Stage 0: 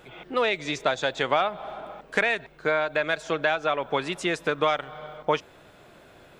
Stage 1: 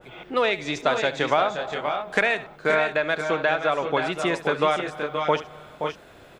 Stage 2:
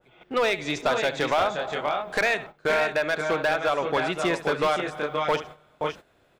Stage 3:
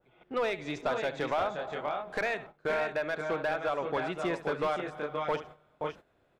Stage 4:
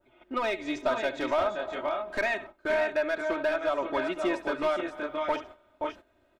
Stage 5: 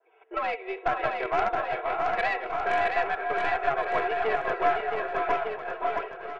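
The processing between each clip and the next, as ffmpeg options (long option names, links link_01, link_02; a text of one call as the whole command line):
ffmpeg -i in.wav -filter_complex "[0:a]asplit=2[link_01][link_02];[link_02]aecho=0:1:71|525|552:0.178|0.398|0.335[link_03];[link_01][link_03]amix=inputs=2:normalize=0,adynamicequalizer=threshold=0.0178:dfrequency=1900:dqfactor=0.7:tfrequency=1900:tqfactor=0.7:attack=5:release=100:ratio=0.375:range=2:mode=cutabove:tftype=highshelf,volume=2dB" out.wav
ffmpeg -i in.wav -af "agate=range=-14dB:threshold=-38dB:ratio=16:detection=peak,volume=17dB,asoftclip=hard,volume=-17dB" out.wav
ffmpeg -i in.wav -af "highshelf=frequency=2600:gain=-9,volume=-6dB" out.wav
ffmpeg -i in.wav -af "aecho=1:1:3.2:0.93" out.wav
ffmpeg -i in.wav -af "highpass=frequency=280:width_type=q:width=0.5412,highpass=frequency=280:width_type=q:width=1.307,lowpass=frequency=2700:width_type=q:width=0.5176,lowpass=frequency=2700:width_type=q:width=0.7071,lowpass=frequency=2700:width_type=q:width=1.932,afreqshift=88,aeval=exprs='0.178*(cos(1*acos(clip(val(0)/0.178,-1,1)))-cos(1*PI/2))+0.0398*(cos(4*acos(clip(val(0)/0.178,-1,1)))-cos(4*PI/2))+0.0141*(cos(6*acos(clip(val(0)/0.178,-1,1)))-cos(6*PI/2))':channel_layout=same,aecho=1:1:670|1206|1635|1978|2252:0.631|0.398|0.251|0.158|0.1" out.wav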